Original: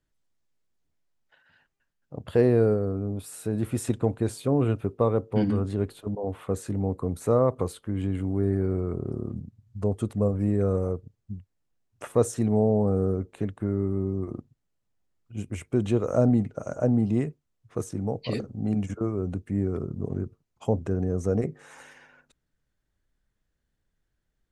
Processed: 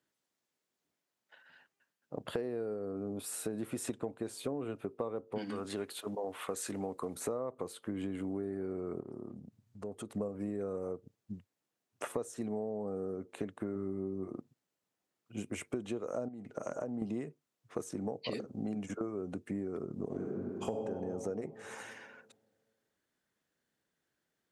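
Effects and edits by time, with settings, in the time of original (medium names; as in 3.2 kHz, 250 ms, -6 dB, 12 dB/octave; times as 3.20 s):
5.38–7.15 s: tilt shelf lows -6.5 dB, about 860 Hz
9.00–10.15 s: compression 2.5:1, threshold -41 dBFS
13.73–14.28 s: flutter echo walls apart 3.6 m, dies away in 0.21 s
16.28–17.02 s: compression 4:1, threshold -31 dBFS
20.06–20.83 s: reverb throw, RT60 1.9 s, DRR -2.5 dB
whole clip: high-pass 240 Hz 12 dB/octave; compression 12:1, threshold -35 dBFS; trim +1.5 dB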